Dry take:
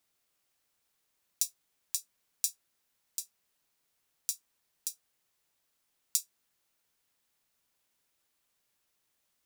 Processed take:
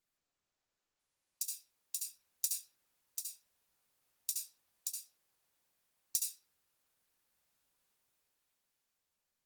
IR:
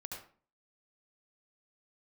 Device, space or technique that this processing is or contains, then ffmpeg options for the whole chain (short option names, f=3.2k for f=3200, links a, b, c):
speakerphone in a meeting room: -filter_complex "[1:a]atrim=start_sample=2205[a];[0:a][a]afir=irnorm=-1:irlink=0,dynaudnorm=f=340:g=9:m=13dB,volume=-6.5dB" -ar 48000 -c:a libopus -b:a 24k